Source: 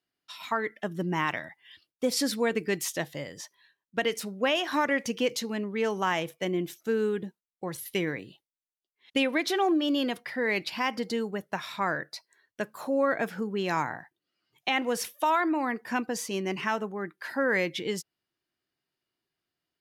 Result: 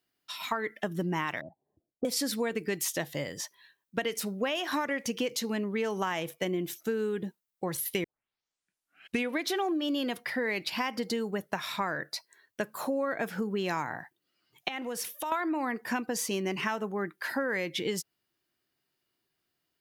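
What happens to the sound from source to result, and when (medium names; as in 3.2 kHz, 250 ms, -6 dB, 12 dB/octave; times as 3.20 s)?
1.41–2.05 s: elliptic low-pass 710 Hz, stop band 70 dB
8.04 s: tape start 1.29 s
14.68–15.32 s: compression 3:1, threshold -39 dBFS
whole clip: treble shelf 12 kHz +9 dB; compression, threshold -31 dBFS; trim +3.5 dB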